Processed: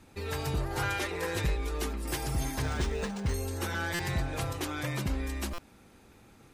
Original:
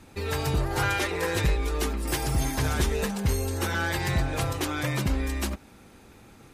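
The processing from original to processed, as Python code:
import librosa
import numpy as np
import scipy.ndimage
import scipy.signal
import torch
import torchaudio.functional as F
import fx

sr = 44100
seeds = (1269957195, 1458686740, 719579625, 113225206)

y = fx.buffer_glitch(x, sr, at_s=(3.94, 5.53), block=256, repeats=8)
y = fx.resample_linear(y, sr, factor=3, at=(2.62, 3.34))
y = y * 10.0 ** (-5.5 / 20.0)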